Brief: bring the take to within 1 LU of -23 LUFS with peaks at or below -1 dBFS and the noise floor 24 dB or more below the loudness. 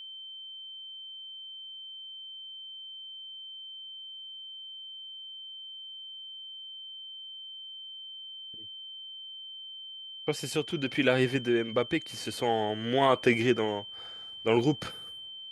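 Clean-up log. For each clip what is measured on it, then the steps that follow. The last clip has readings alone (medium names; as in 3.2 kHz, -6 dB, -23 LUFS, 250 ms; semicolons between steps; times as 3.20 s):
dropouts 1; longest dropout 2.3 ms; steady tone 3.1 kHz; tone level -41 dBFS; loudness -33.0 LUFS; peak level -10.0 dBFS; loudness target -23.0 LUFS
-> interpolate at 14.61 s, 2.3 ms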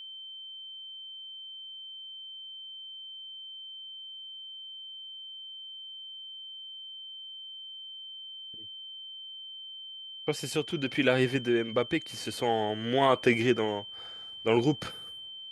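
dropouts 0; steady tone 3.1 kHz; tone level -41 dBFS
-> band-stop 3.1 kHz, Q 30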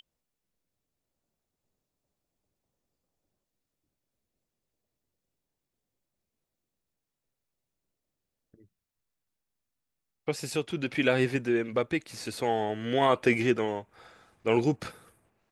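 steady tone not found; loudness -28.5 LUFS; peak level -10.0 dBFS; loudness target -23.0 LUFS
-> trim +5.5 dB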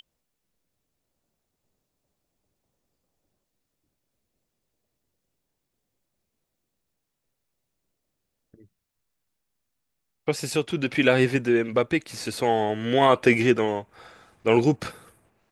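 loudness -23.0 LUFS; peak level -4.5 dBFS; noise floor -81 dBFS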